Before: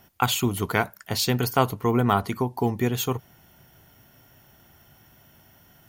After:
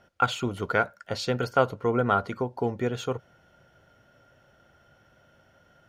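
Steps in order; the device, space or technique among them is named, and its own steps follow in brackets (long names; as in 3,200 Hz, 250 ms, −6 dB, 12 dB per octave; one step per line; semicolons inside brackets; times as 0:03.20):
inside a cardboard box (low-pass filter 5,500 Hz 12 dB per octave; hollow resonant body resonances 540/1,400 Hz, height 13 dB, ringing for 25 ms)
level −6.5 dB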